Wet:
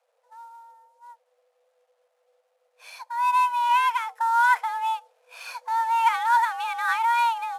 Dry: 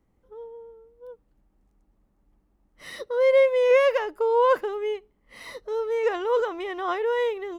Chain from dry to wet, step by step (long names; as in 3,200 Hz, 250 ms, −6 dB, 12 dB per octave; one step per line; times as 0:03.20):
variable-slope delta modulation 64 kbit/s
speech leveller within 4 dB 2 s
frequency shifter +460 Hz